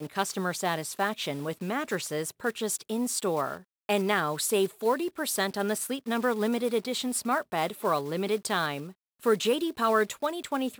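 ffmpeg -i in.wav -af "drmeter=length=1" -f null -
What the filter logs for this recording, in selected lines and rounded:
Channel 1: DR: 11.7
Overall DR: 11.7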